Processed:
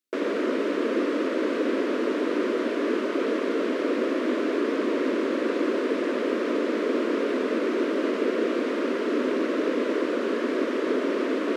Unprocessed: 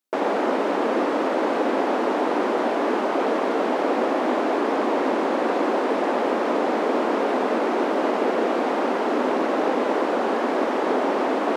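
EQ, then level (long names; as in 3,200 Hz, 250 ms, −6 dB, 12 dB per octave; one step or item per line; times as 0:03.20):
high-shelf EQ 5,300 Hz −4.5 dB
phaser with its sweep stopped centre 330 Hz, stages 4
0.0 dB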